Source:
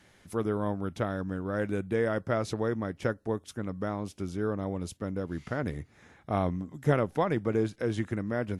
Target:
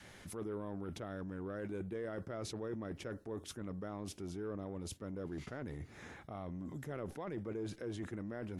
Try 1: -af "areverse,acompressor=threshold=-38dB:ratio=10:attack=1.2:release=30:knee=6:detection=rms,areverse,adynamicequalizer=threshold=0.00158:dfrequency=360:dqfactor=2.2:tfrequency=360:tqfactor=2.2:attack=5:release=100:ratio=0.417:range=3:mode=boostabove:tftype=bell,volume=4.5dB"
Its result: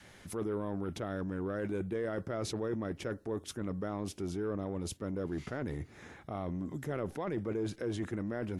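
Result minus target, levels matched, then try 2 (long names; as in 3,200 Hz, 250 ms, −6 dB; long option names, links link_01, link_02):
downward compressor: peak gain reduction −6.5 dB
-af "areverse,acompressor=threshold=-45dB:ratio=10:attack=1.2:release=30:knee=6:detection=rms,areverse,adynamicequalizer=threshold=0.00158:dfrequency=360:dqfactor=2.2:tfrequency=360:tqfactor=2.2:attack=5:release=100:ratio=0.417:range=3:mode=boostabove:tftype=bell,volume=4.5dB"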